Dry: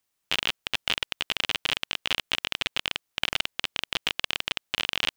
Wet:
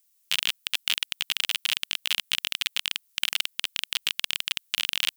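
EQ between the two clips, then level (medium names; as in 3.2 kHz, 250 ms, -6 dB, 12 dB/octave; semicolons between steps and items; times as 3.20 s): dynamic bell 6.1 kHz, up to -3 dB, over -45 dBFS, Q 1.4; brick-wall FIR high-pass 220 Hz; differentiator; +9.0 dB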